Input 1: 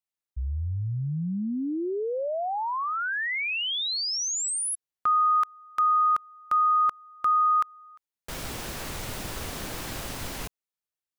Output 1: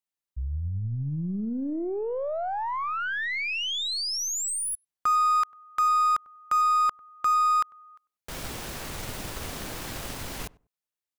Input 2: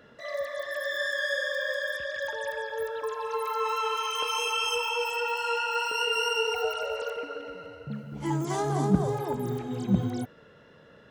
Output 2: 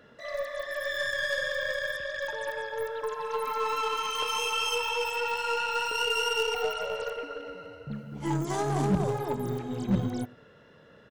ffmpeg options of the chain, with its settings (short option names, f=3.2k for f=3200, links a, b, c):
-filter_complex "[0:a]asplit=2[a][b];[b]adelay=97,lowpass=f=960:p=1,volume=-20.5dB,asplit=2[c][d];[d]adelay=97,lowpass=f=960:p=1,volume=0.21[e];[a][c][e]amix=inputs=3:normalize=0,volume=19dB,asoftclip=hard,volume=-19dB,aeval=exprs='0.119*(cos(1*acos(clip(val(0)/0.119,-1,1)))-cos(1*PI/2))+0.00473*(cos(3*acos(clip(val(0)/0.119,-1,1)))-cos(3*PI/2))+0.00944*(cos(6*acos(clip(val(0)/0.119,-1,1)))-cos(6*PI/2))+0.00422*(cos(8*acos(clip(val(0)/0.119,-1,1)))-cos(8*PI/2))':c=same"